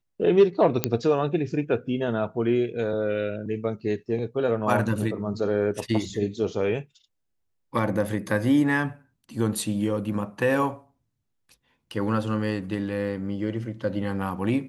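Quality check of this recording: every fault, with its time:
0.84 s: pop -4 dBFS

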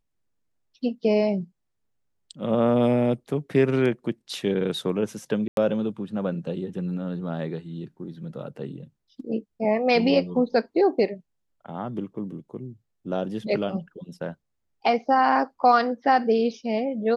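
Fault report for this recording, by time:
5.48–5.57 s: dropout 92 ms

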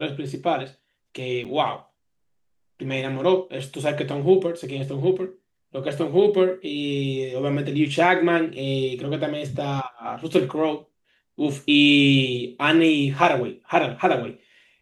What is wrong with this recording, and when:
1.44–1.45 s: dropout 7.1 ms

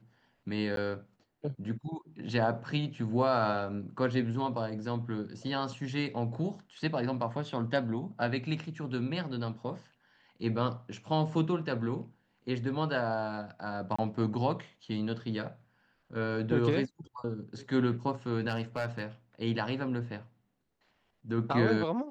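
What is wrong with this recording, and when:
0.76–0.77 s: dropout 12 ms
13.96–13.98 s: dropout 25 ms
18.48–19.02 s: clipped -26.5 dBFS

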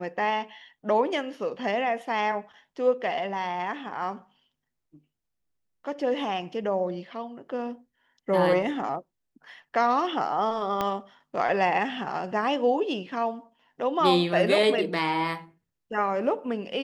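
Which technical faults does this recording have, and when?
10.81 s: pop -13 dBFS

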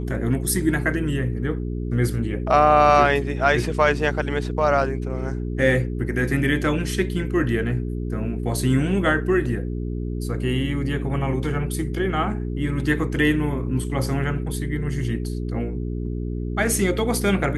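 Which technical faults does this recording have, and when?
hum 60 Hz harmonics 7 -27 dBFS

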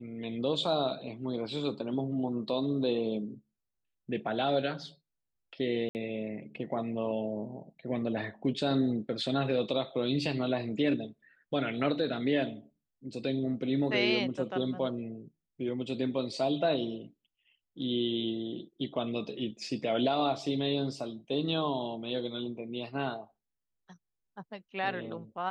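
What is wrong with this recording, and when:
5.89–5.95 s: dropout 59 ms

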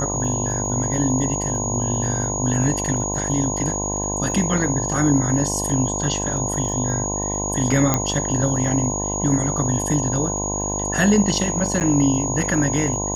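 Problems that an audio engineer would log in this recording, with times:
buzz 50 Hz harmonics 21 -27 dBFS
crackle 18 per s -31 dBFS
whine 6.7 kHz -25 dBFS
7.94 s: pop -3 dBFS
11.80–11.81 s: dropout 9.2 ms

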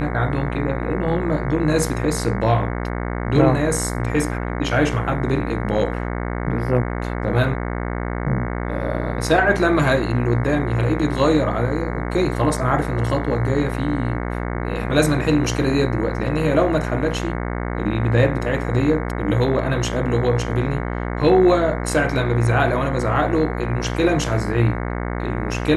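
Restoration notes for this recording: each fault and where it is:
buzz 60 Hz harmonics 37 -25 dBFS

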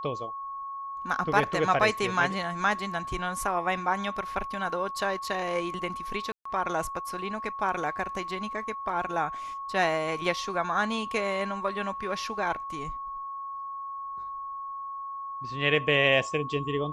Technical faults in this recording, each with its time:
whine 1.1 kHz -34 dBFS
6.32–6.45 s: dropout 134 ms

